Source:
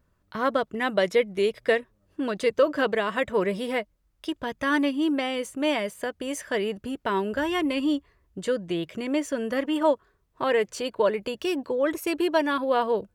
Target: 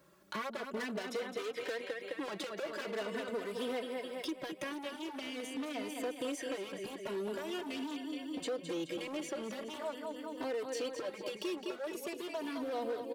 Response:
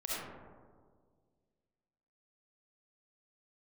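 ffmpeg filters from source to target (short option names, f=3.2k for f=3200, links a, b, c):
-filter_complex "[0:a]acrossover=split=520|4200[a][b][c];[a]acompressor=threshold=-38dB:ratio=4[d];[b]acompressor=threshold=-34dB:ratio=4[e];[c]acompressor=threshold=-58dB:ratio=4[f];[d][e][f]amix=inputs=3:normalize=0,asetnsamples=n=441:p=0,asendcmd='3.03 equalizer g -13',equalizer=f=1.3k:w=0.51:g=-3,aecho=1:1:212|424|636|848|1060|1272|1484:0.355|0.199|0.111|0.0623|0.0349|0.0195|0.0109,asoftclip=type=hard:threshold=-37.5dB,highpass=270,acompressor=threshold=-49dB:ratio=3,asoftclip=type=tanh:threshold=-38.5dB,asplit=2[g][h];[h]adelay=3.2,afreqshift=0.44[i];[g][i]amix=inputs=2:normalize=1,volume=14.5dB"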